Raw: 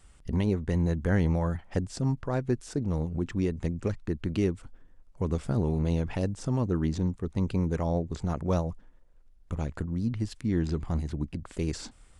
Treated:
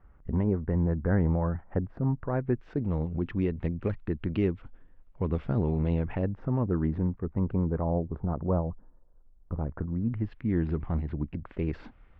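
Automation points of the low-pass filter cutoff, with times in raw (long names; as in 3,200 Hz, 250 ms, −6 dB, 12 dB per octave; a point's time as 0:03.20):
low-pass filter 24 dB per octave
0:02.10 1,600 Hz
0:02.87 3,000 Hz
0:05.83 3,000 Hz
0:06.42 1,900 Hz
0:07.12 1,900 Hz
0:08.02 1,200 Hz
0:09.56 1,200 Hz
0:10.38 2,500 Hz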